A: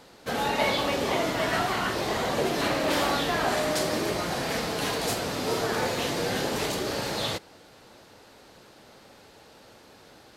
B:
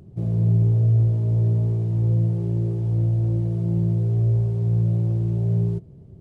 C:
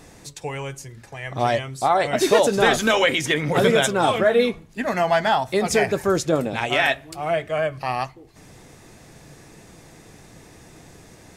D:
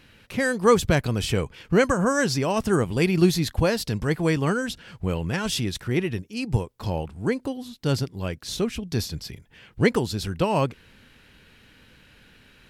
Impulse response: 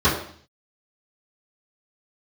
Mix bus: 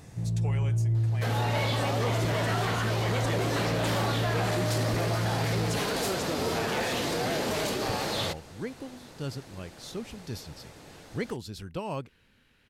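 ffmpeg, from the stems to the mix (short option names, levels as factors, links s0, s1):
-filter_complex "[0:a]adelay=950,volume=1[s0];[1:a]asoftclip=type=tanh:threshold=0.168,equalizer=f=400:t=o:w=1.1:g=-12.5,volume=0.668[s1];[2:a]acompressor=threshold=0.0708:ratio=6,volume=0.473[s2];[3:a]adelay=1350,volume=0.266[s3];[s0][s1][s2][s3]amix=inputs=4:normalize=0,asoftclip=type=tanh:threshold=0.126,alimiter=limit=0.0841:level=0:latency=1"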